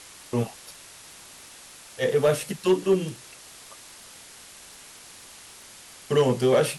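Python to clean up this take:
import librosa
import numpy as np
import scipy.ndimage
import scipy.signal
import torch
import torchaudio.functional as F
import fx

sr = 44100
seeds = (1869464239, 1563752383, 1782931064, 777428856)

y = fx.fix_declip(x, sr, threshold_db=-13.0)
y = fx.fix_declick_ar(y, sr, threshold=6.5)
y = fx.noise_reduce(y, sr, print_start_s=5.58, print_end_s=6.08, reduce_db=22.0)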